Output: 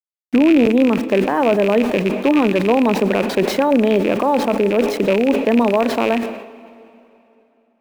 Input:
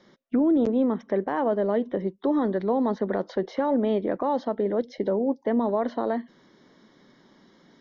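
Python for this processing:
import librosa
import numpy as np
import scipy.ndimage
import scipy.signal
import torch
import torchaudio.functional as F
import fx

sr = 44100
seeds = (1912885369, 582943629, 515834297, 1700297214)

y = fx.rattle_buzz(x, sr, strikes_db=-32.0, level_db=-21.0)
y = fx.high_shelf(y, sr, hz=3600.0, db=-6.0, at=(4.02, 4.77))
y = np.where(np.abs(y) >= 10.0 ** (-44.0 / 20.0), y, 0.0)
y = fx.rev_plate(y, sr, seeds[0], rt60_s=3.1, hf_ratio=0.85, predelay_ms=0, drr_db=15.5)
y = fx.sustainer(y, sr, db_per_s=66.0)
y = F.gain(torch.from_numpy(y), 8.5).numpy()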